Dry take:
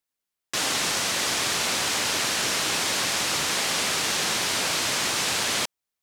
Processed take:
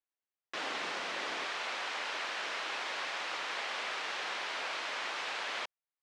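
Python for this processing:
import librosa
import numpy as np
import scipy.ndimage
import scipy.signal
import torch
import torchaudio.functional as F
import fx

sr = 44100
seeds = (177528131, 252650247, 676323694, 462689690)

y = fx.bandpass_edges(x, sr, low_hz=fx.steps((0.0, 330.0), (1.46, 570.0)), high_hz=2700.0)
y = F.gain(torch.from_numpy(y), -7.5).numpy()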